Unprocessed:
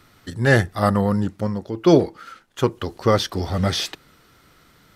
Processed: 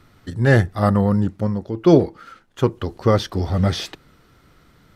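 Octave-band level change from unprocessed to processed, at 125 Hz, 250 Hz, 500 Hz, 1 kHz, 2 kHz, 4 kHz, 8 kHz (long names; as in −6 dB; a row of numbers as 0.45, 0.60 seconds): +3.5, +2.0, +0.5, −1.0, −2.0, −4.0, −5.0 decibels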